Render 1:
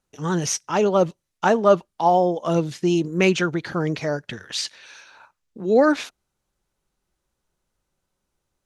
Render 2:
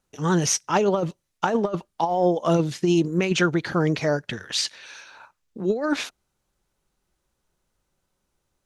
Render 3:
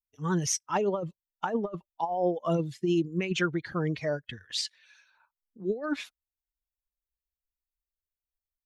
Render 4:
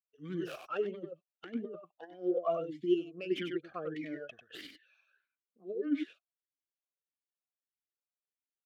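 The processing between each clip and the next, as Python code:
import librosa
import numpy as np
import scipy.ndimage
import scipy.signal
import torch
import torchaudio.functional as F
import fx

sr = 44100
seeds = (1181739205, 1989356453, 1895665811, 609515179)

y1 = fx.over_compress(x, sr, threshold_db=-19.0, ratio=-0.5)
y2 = fx.bin_expand(y1, sr, power=1.5)
y2 = F.gain(torch.from_numpy(y2), -5.0).numpy()
y3 = fx.tracing_dist(y2, sr, depth_ms=0.35)
y3 = y3 + 10.0 ** (-7.0 / 20.0) * np.pad(y3, (int(96 * sr / 1000.0), 0))[:len(y3)]
y3 = fx.vowel_sweep(y3, sr, vowels='a-i', hz=1.6)
y3 = F.gain(torch.from_numpy(y3), 3.5).numpy()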